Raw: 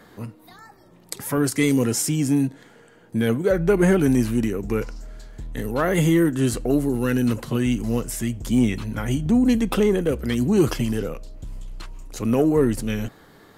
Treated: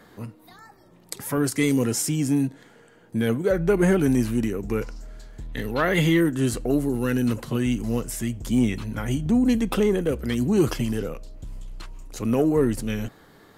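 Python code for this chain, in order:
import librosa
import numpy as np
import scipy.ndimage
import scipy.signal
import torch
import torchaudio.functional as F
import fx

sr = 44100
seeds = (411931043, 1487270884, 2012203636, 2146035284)

y = fx.graphic_eq_10(x, sr, hz=(2000, 4000, 8000), db=(5, 8, -7), at=(5.49, 6.21))
y = F.gain(torch.from_numpy(y), -2.0).numpy()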